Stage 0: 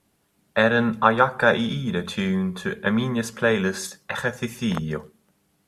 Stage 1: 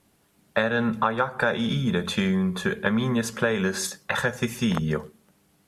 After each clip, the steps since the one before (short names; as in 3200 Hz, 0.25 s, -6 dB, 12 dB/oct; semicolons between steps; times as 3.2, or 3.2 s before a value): compressor 6:1, threshold -23 dBFS, peak gain reduction 12 dB; gain +3.5 dB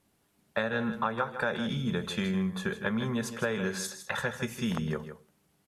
echo 0.158 s -10.5 dB; gain -7 dB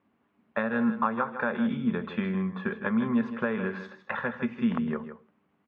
speaker cabinet 100–2600 Hz, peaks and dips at 110 Hz -3 dB, 150 Hz -6 dB, 240 Hz +9 dB, 1100 Hz +6 dB